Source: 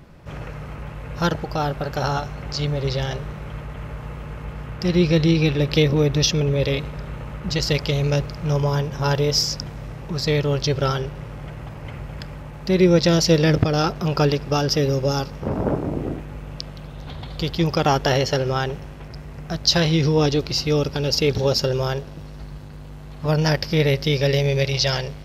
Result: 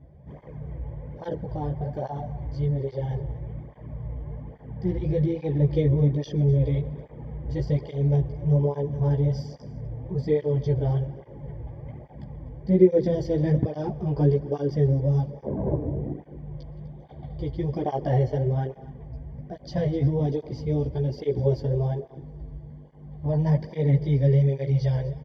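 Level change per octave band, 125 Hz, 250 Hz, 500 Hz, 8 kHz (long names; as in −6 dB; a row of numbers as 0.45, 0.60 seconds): −1.5 dB, −4.5 dB, −5.0 dB, below −25 dB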